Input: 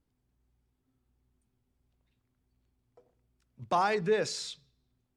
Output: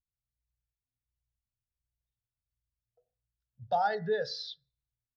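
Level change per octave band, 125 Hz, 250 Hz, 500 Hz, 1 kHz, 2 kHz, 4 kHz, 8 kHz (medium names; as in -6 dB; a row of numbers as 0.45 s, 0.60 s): -3.5 dB, -7.0 dB, -2.5 dB, -0.5 dB, -3.0 dB, -1.5 dB, under -15 dB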